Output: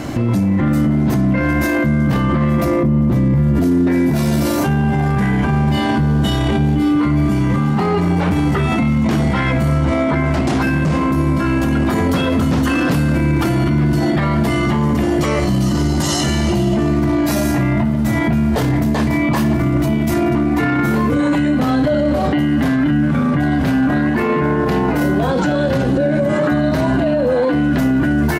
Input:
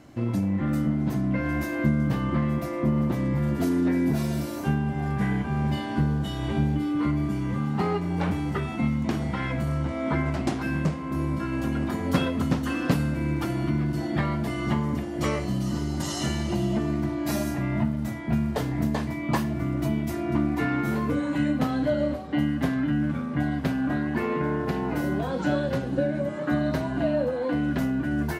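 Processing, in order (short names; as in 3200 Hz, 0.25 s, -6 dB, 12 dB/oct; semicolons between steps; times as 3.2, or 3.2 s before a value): 2.65–3.87 low shelf 350 Hz +11 dB; outdoor echo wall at 31 m, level -20 dB; maximiser +33 dB; gain -8 dB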